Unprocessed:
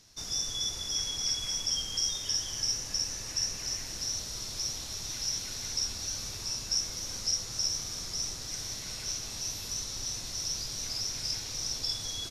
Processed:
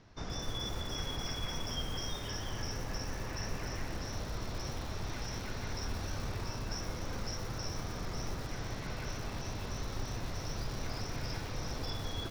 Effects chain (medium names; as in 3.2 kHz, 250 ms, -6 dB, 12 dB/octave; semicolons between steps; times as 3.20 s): low-pass 1.6 kHz 12 dB/octave; bit-crushed delay 122 ms, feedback 55%, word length 8-bit, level -11 dB; trim +7.5 dB